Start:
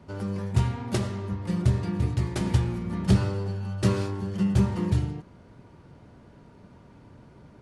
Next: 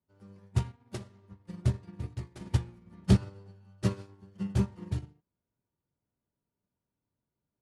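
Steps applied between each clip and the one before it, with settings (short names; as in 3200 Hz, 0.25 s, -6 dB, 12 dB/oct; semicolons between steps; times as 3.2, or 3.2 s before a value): upward expander 2.5:1, over -40 dBFS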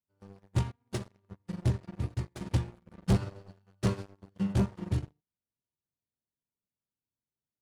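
sample leveller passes 3; gain -6.5 dB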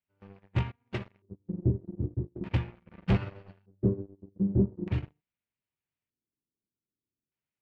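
LFO low-pass square 0.41 Hz 350–2500 Hz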